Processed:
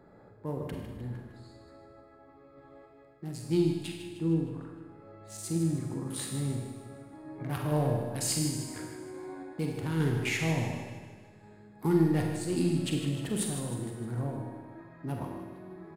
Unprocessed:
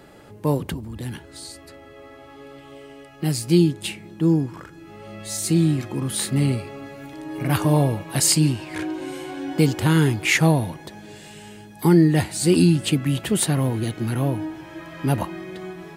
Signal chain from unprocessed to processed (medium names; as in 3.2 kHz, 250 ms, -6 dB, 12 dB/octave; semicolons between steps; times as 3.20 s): local Wiener filter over 15 samples; feedback comb 120 Hz, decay 1.1 s, harmonics all, mix 60%; in parallel at -8 dB: saturation -21.5 dBFS, distortion -13 dB; on the sum: random-step tremolo 3.5 Hz; on a send: feedback delay 154 ms, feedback 51%, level -10.5 dB; on the sum: Schroeder reverb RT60 1.1 s, combs from 33 ms, DRR 2 dB; trim -4.5 dB